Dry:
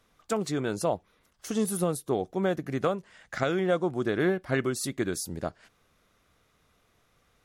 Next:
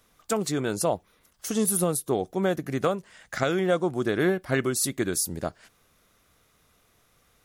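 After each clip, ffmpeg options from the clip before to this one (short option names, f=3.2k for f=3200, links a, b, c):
-af "highshelf=f=7.6k:g=11,volume=2dB"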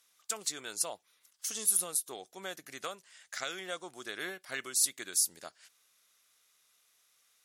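-af "bandpass=f=7.1k:t=q:w=0.55:csg=0"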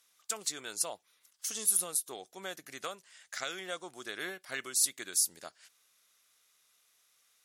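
-af anull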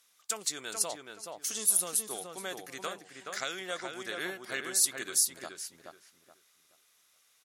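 -filter_complex "[0:a]asplit=2[a][b];[b]adelay=425,lowpass=f=2.2k:p=1,volume=-4dB,asplit=2[c][d];[d]adelay=425,lowpass=f=2.2k:p=1,volume=0.28,asplit=2[e][f];[f]adelay=425,lowpass=f=2.2k:p=1,volume=0.28,asplit=2[g][h];[h]adelay=425,lowpass=f=2.2k:p=1,volume=0.28[i];[a][c][e][g][i]amix=inputs=5:normalize=0,volume=2dB"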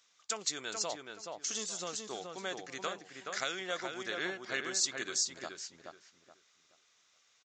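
-af "aresample=16000,aresample=44100"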